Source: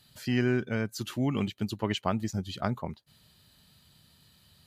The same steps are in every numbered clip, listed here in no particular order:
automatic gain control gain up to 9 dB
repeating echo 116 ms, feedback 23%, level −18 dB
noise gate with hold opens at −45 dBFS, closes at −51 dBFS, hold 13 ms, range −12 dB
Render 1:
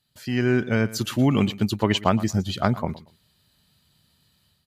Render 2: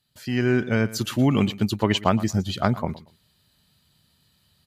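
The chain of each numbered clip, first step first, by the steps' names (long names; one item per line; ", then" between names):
noise gate with hold, then automatic gain control, then repeating echo
noise gate with hold, then repeating echo, then automatic gain control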